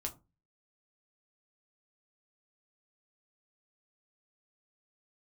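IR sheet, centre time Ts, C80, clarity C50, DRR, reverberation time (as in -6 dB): 11 ms, 22.5 dB, 16.5 dB, 1.5 dB, 0.25 s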